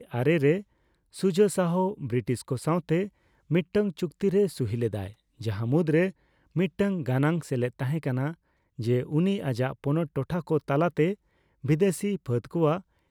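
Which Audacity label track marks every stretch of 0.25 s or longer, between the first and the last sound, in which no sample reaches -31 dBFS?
0.600000	1.170000	silence
3.060000	3.510000	silence
5.070000	5.410000	silence
6.090000	6.560000	silence
8.320000	8.790000	silence
11.130000	11.650000	silence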